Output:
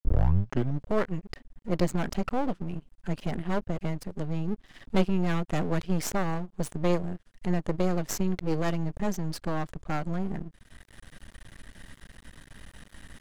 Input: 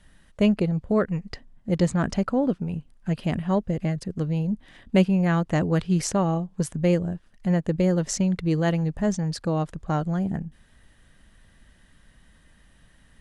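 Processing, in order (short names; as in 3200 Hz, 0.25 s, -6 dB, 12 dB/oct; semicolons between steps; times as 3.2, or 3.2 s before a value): tape start at the beginning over 0.85 s; upward compressor, threshold -32 dBFS; half-wave rectifier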